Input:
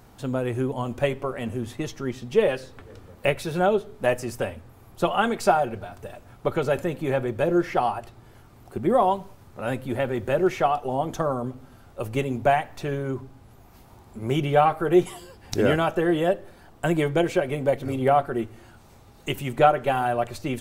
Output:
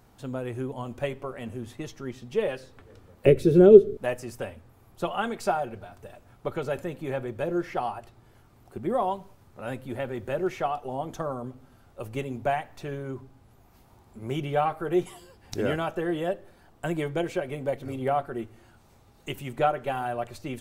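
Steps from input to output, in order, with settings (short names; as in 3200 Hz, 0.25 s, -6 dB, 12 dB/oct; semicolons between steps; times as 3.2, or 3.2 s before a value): 3.26–3.97 resonant low shelf 580 Hz +12.5 dB, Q 3; gain -6.5 dB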